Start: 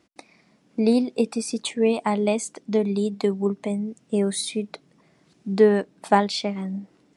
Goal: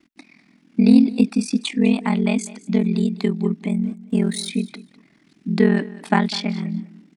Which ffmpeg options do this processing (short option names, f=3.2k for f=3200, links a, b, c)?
-filter_complex "[0:a]equalizer=f=125:t=o:w=1:g=-10,equalizer=f=250:t=o:w=1:g=11,equalizer=f=500:t=o:w=1:g=-12,equalizer=f=1k:t=o:w=1:g=-3,equalizer=f=2k:t=o:w=1:g=4,equalizer=f=8k:t=o:w=1:g=-5,aeval=exprs='val(0)*sin(2*PI*21*n/s)':c=same,asplit=3[a][b][c];[a]afade=t=out:st=3.84:d=0.02[d];[b]aeval=exprs='sgn(val(0))*max(abs(val(0))-0.00188,0)':c=same,afade=t=in:st=3.84:d=0.02,afade=t=out:st=4.48:d=0.02[e];[c]afade=t=in:st=4.48:d=0.02[f];[d][e][f]amix=inputs=3:normalize=0,aecho=1:1:201|402:0.119|0.0214,volume=5.5dB"